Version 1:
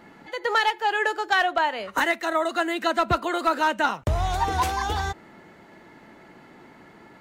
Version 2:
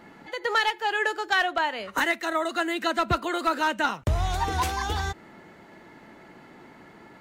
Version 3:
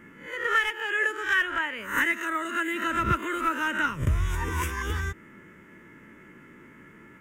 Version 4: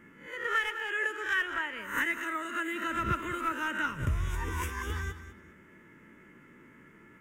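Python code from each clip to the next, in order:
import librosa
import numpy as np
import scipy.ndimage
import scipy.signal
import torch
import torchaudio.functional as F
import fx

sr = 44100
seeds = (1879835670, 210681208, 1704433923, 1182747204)

y1 = fx.dynamic_eq(x, sr, hz=740.0, q=0.87, threshold_db=-35.0, ratio=4.0, max_db=-4)
y2 = fx.spec_swells(y1, sr, rise_s=0.43)
y2 = fx.fixed_phaser(y2, sr, hz=1800.0, stages=4)
y3 = fx.echo_feedback(y2, sr, ms=202, feedback_pct=22, wet_db=-12.5)
y3 = y3 * librosa.db_to_amplitude(-5.5)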